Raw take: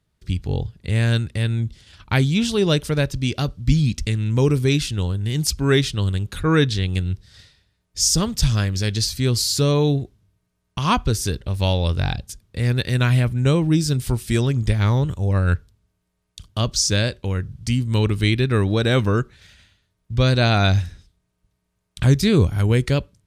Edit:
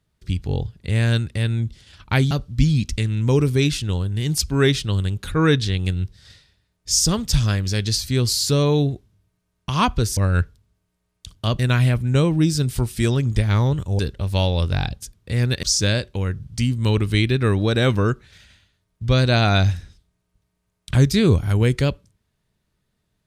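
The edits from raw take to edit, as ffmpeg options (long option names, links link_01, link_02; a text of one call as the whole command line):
ffmpeg -i in.wav -filter_complex "[0:a]asplit=6[link_01][link_02][link_03][link_04][link_05][link_06];[link_01]atrim=end=2.312[link_07];[link_02]atrim=start=3.398:end=11.262[link_08];[link_03]atrim=start=15.298:end=16.722[link_09];[link_04]atrim=start=12.898:end=15.302[link_10];[link_05]atrim=start=11.258:end=12.902[link_11];[link_06]atrim=start=16.718[link_12];[link_07][link_08]acrossfade=duration=0.004:curve1=hsin:curve2=hsin[link_13];[link_13][link_09]acrossfade=duration=0.004:curve1=hsin:curve2=hsin[link_14];[link_14][link_10]acrossfade=duration=0.004:curve1=hsin:curve2=hsin[link_15];[link_15][link_11]acrossfade=duration=0.004:curve1=hsin:curve2=hsin[link_16];[link_16][link_12]acrossfade=duration=0.004:curve1=hsin:curve2=hsin" out.wav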